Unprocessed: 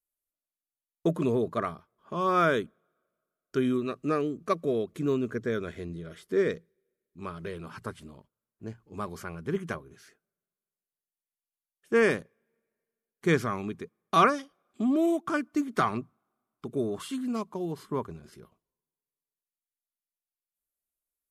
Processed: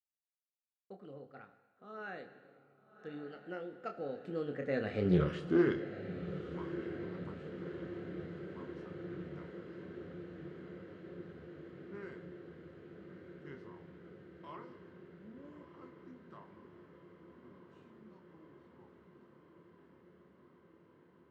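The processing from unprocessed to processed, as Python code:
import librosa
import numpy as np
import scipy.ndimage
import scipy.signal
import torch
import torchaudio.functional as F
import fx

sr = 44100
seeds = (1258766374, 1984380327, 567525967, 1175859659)

y = fx.doppler_pass(x, sr, speed_mps=49, closest_m=3.1, pass_at_s=5.16)
y = scipy.signal.sosfilt(scipy.signal.butter(2, 3600.0, 'lowpass', fs=sr, output='sos'), y)
y = fx.doubler(y, sr, ms=28.0, db=-7)
y = fx.echo_diffused(y, sr, ms=1199, feedback_pct=79, wet_db=-11.0)
y = fx.rev_gated(y, sr, seeds[0], gate_ms=450, shape='falling', drr_db=10.0)
y = fx.doppler_dist(y, sr, depth_ms=0.14)
y = y * librosa.db_to_amplitude(12.5)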